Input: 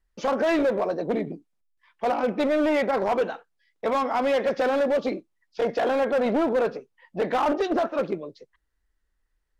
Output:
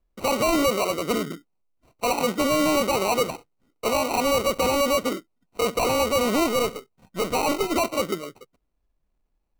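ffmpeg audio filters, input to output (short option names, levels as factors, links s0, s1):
-filter_complex "[0:a]asettb=1/sr,asplit=3[s0][s1][s2];[s0]atrim=end=6.474[s3];[s1]atrim=start=6.47:end=7.76,asetpts=PTS-STARTPTS,afade=t=in:d=0.004:c=qsin,afade=t=out:st=1.286:d=0.004:c=qsin,aeval=exprs='if(lt(val(0),0),0.708*val(0),val(0))':c=same[s4];[s2]atrim=start=7.756[s5];[s3][s4]acrossfade=d=0.004:c1=hsin:c2=qsin[s6];[s6][s5]acrossfade=d=0.004:c1=qsin:c2=hsin,acrusher=samples=26:mix=1:aa=0.000001,volume=1.12"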